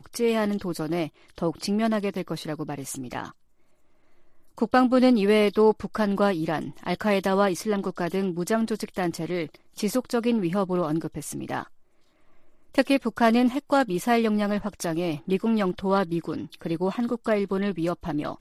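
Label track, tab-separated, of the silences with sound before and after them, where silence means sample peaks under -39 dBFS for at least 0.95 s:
3.300000	4.580000	silence
11.640000	12.750000	silence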